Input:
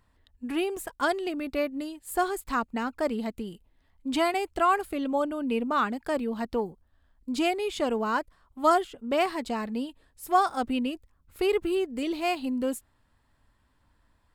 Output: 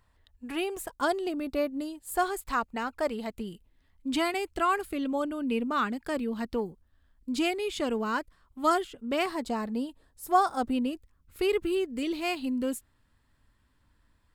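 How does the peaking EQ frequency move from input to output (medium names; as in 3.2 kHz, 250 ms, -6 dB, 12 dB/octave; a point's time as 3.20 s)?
peaking EQ -6 dB 1.1 oct
260 Hz
from 0.87 s 2.1 kHz
from 2.14 s 250 Hz
from 3.40 s 750 Hz
from 9.27 s 2.5 kHz
from 10.93 s 750 Hz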